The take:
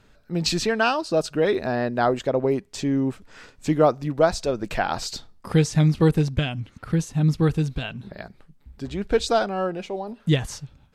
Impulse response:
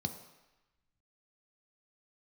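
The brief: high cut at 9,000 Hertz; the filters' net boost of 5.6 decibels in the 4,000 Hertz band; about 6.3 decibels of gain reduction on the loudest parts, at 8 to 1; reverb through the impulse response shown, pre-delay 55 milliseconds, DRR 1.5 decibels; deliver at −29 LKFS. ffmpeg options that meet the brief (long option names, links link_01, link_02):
-filter_complex "[0:a]lowpass=9000,equalizer=frequency=4000:width_type=o:gain=7,acompressor=threshold=-19dB:ratio=8,asplit=2[link_01][link_02];[1:a]atrim=start_sample=2205,adelay=55[link_03];[link_02][link_03]afir=irnorm=-1:irlink=0,volume=-2.5dB[link_04];[link_01][link_04]amix=inputs=2:normalize=0,volume=-9.5dB"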